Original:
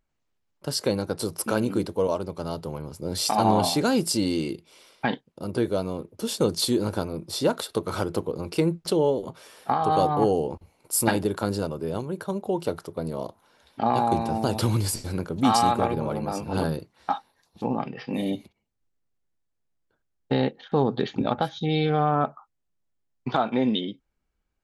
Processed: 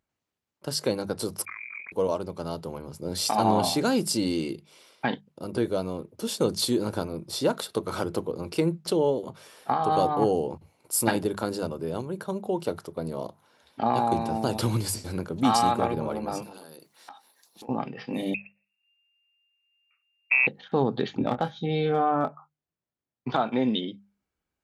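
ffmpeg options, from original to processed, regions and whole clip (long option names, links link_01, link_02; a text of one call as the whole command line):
ffmpeg -i in.wav -filter_complex "[0:a]asettb=1/sr,asplit=3[link_01][link_02][link_03];[link_01]atrim=end=1.454[link_04];[link_02]atrim=start=1.45:end=1.92,asetpts=PTS-STARTPTS,afade=type=in:duration=0.004:curve=qsin,afade=type=out:start_time=0.466:duration=0.004:curve=qsin,lowpass=frequency=2200:width_type=q:width=0.5098,lowpass=frequency=2200:width_type=q:width=0.6013,lowpass=frequency=2200:width_type=q:width=0.9,lowpass=frequency=2200:width_type=q:width=2.563,afreqshift=-2600,acompressor=threshold=-30dB:ratio=12:attack=3.2:release=140:knee=1:detection=peak,tremolo=f=43:d=0.788[link_05];[link_03]atrim=start=1.916[link_06];[link_04][link_05]acrossfade=duration=0.004:curve1=hsin:curve2=qsin[link_07];[link_07][link_06]acrossfade=duration=0.004:curve1=qsin:curve2=hsin,asettb=1/sr,asplit=3[link_08][link_09][link_10];[link_08]atrim=end=16.424[link_11];[link_09]atrim=start=16.42:end=17.69,asetpts=PTS-STARTPTS,afade=type=in:duration=0.004:curve=qsin,afade=type=out:start_time=1.266:duration=0.004:curve=qsin,highpass=270,aemphasis=mode=production:type=75kf,acompressor=threshold=-40dB:ratio=12:attack=3.2:release=140:knee=1:detection=peak[link_12];[link_10]atrim=start=17.686[link_13];[link_11][link_12]acrossfade=duration=0.004:curve1=hsin:curve2=qsin[link_14];[link_14][link_13]acrossfade=duration=0.004:curve1=qsin:curve2=hsin,asettb=1/sr,asplit=3[link_15][link_16][link_17];[link_15]atrim=end=18.344[link_18];[link_16]atrim=start=18.34:end=20.47,asetpts=PTS-STARTPTS,afade=type=in:duration=0.004:curve=qsin,afade=type=out:start_time=2.126:duration=0.004:curve=qsin,tiltshelf=frequency=830:gain=3.5,lowpass=frequency=2400:width_type=q:width=0.5098,lowpass=frequency=2400:width_type=q:width=0.6013,lowpass=frequency=2400:width_type=q:width=0.9,lowpass=frequency=2400:width_type=q:width=2.563,afreqshift=-2800[link_19];[link_17]atrim=start=20.466[link_20];[link_18][link_19]acrossfade=duration=0.004:curve1=hsin:curve2=qsin[link_21];[link_21][link_20]acrossfade=duration=0.004:curve1=qsin:curve2=hsin,asettb=1/sr,asplit=3[link_22][link_23][link_24];[link_22]atrim=end=21.174[link_25];[link_23]atrim=start=21.17:end=23.3,asetpts=PTS-STARTPTS,afade=type=in:duration=0.004:curve=qsin,afade=type=out:start_time=2.126:duration=0.004:curve=qsin,lowpass=frequency=2400:poles=1,asoftclip=type=hard:threshold=-13.5dB,asplit=2[link_26][link_27];[link_27]adelay=24,volume=-8dB[link_28];[link_26][link_28]amix=inputs=2:normalize=0,atrim=end_sample=93933[link_29];[link_24]atrim=start=23.296[link_30];[link_25][link_29]acrossfade=duration=0.004:curve1=hsin:curve2=qsin[link_31];[link_31][link_30]acrossfade=duration=0.004:curve1=qsin:curve2=hsin,highpass=78,bandreject=frequency=50:width_type=h:width=6,bandreject=frequency=100:width_type=h:width=6,bandreject=frequency=150:width_type=h:width=6,bandreject=frequency=200:width_type=h:width=6,volume=-1.5dB" out.wav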